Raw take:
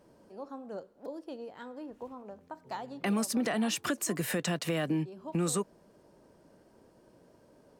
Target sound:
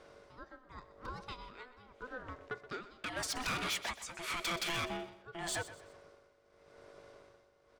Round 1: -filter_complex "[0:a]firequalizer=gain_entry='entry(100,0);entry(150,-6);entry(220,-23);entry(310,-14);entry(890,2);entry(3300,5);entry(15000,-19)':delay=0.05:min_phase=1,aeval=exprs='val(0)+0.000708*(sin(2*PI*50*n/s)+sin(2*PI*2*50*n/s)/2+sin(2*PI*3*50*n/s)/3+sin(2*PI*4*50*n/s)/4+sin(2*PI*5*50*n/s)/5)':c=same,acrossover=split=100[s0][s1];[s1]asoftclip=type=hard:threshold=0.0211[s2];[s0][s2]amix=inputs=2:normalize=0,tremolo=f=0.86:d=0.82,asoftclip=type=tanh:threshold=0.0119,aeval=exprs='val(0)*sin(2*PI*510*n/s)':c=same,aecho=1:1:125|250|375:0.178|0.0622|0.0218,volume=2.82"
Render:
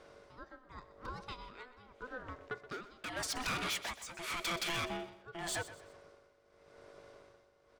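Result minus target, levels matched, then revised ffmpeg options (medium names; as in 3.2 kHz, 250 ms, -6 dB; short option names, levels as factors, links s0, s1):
hard clipper: distortion +9 dB
-filter_complex "[0:a]firequalizer=gain_entry='entry(100,0);entry(150,-6);entry(220,-23);entry(310,-14);entry(890,2);entry(3300,5);entry(15000,-19)':delay=0.05:min_phase=1,aeval=exprs='val(0)+0.000708*(sin(2*PI*50*n/s)+sin(2*PI*2*50*n/s)/2+sin(2*PI*3*50*n/s)/3+sin(2*PI*4*50*n/s)/4+sin(2*PI*5*50*n/s)/5)':c=same,acrossover=split=100[s0][s1];[s1]asoftclip=type=hard:threshold=0.0501[s2];[s0][s2]amix=inputs=2:normalize=0,tremolo=f=0.86:d=0.82,asoftclip=type=tanh:threshold=0.0119,aeval=exprs='val(0)*sin(2*PI*510*n/s)':c=same,aecho=1:1:125|250|375:0.178|0.0622|0.0218,volume=2.82"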